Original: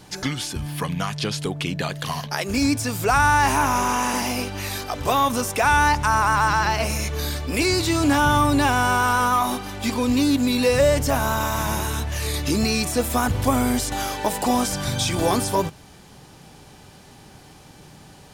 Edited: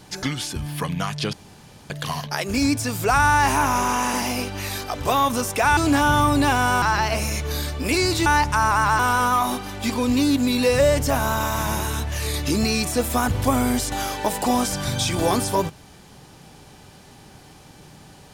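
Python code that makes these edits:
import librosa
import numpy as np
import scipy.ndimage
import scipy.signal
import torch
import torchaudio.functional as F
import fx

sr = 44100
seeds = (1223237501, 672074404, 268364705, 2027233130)

y = fx.edit(x, sr, fx.room_tone_fill(start_s=1.33, length_s=0.57),
    fx.swap(start_s=5.77, length_s=0.73, other_s=7.94, other_length_s=1.05), tone=tone)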